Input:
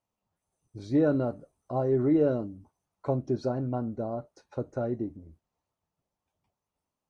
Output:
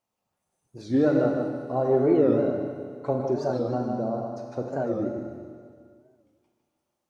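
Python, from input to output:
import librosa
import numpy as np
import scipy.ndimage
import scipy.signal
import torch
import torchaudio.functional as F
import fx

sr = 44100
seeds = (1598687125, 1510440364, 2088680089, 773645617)

y = fx.low_shelf(x, sr, hz=120.0, db=-11.0)
y = fx.notch(y, sr, hz=980.0, q=23.0)
y = y + 10.0 ** (-6.5 / 20.0) * np.pad(y, (int(153 * sr / 1000.0), 0))[:len(y)]
y = fx.rev_schroeder(y, sr, rt60_s=2.0, comb_ms=32, drr_db=2.5)
y = fx.record_warp(y, sr, rpm=45.0, depth_cents=160.0)
y = y * 10.0 ** (3.0 / 20.0)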